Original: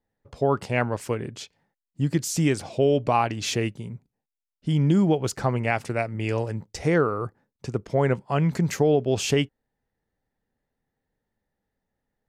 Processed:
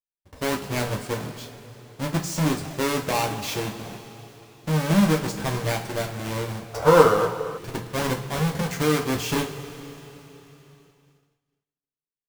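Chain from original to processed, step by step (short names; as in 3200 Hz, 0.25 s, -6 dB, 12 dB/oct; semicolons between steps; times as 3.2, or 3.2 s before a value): half-waves squared off; two-slope reverb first 0.28 s, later 3.8 s, from -18 dB, DRR 0.5 dB; spectral gain 6.74–7.58, 420–1600 Hz +12 dB; expander -45 dBFS; gain -8 dB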